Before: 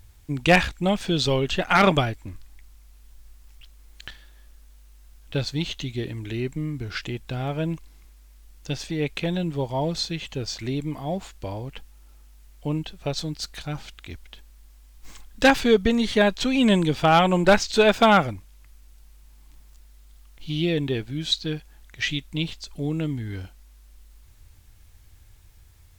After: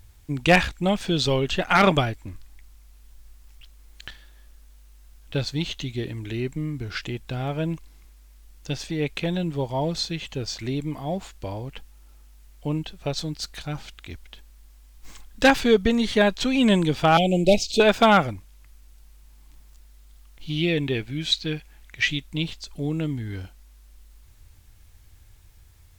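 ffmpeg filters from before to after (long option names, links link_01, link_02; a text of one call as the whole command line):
ffmpeg -i in.wav -filter_complex "[0:a]asettb=1/sr,asplit=3[link_01][link_02][link_03];[link_01]atrim=end=17.174[link_04];[link_02]atrim=start=17.17:end=17.8,asetpts=PTS-STARTPTS,afade=type=in:duration=0.004:curve=qsin,afade=type=out:start_time=0.626:duration=0.004:curve=qsin,asuperstop=centerf=1300:order=12:qfactor=0.82[link_05];[link_03]atrim=start=17.796[link_06];[link_04][link_05]acrossfade=duration=0.004:curve1=hsin:curve2=qsin[link_07];[link_07][link_06]acrossfade=duration=0.004:curve1=qsin:curve2=hsin,asettb=1/sr,asplit=3[link_08][link_09][link_10];[link_08]atrim=end=20.574[link_11];[link_09]atrim=start=20.57:end=22.07,asetpts=PTS-STARTPTS,afade=type=in:duration=0.004:curve=qsin,afade=type=out:start_time=1.496:duration=0.004:curve=qsin,equalizer=frequency=2300:width=2.2:gain=6.5[link_12];[link_10]atrim=start=22.066[link_13];[link_11][link_12]acrossfade=duration=0.004:curve1=hsin:curve2=qsin[link_14];[link_14][link_13]acrossfade=duration=0.004:curve1=qsin:curve2=hsin" out.wav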